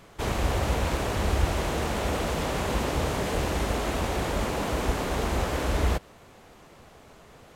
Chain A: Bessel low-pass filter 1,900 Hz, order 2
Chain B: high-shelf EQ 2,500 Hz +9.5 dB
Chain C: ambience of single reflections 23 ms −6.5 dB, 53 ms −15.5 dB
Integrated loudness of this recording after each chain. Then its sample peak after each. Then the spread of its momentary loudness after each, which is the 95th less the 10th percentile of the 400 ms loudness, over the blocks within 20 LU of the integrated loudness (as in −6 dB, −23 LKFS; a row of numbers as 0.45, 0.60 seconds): −29.0, −26.0, −27.0 LKFS; −11.0, −9.5, −9.0 dBFS; 2, 1, 2 LU